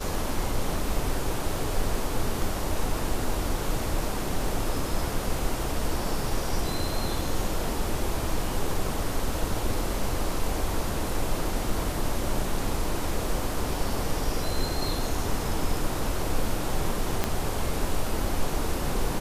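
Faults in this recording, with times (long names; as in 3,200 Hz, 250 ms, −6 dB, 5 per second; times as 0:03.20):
0:17.24: click −9 dBFS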